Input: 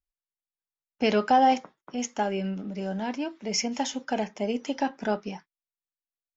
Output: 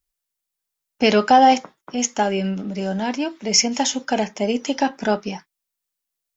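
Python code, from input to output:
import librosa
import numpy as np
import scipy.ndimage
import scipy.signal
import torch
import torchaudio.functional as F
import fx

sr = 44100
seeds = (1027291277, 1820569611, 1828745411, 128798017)

y = fx.high_shelf(x, sr, hz=4500.0, db=8.0)
y = y * librosa.db_to_amplitude(7.0)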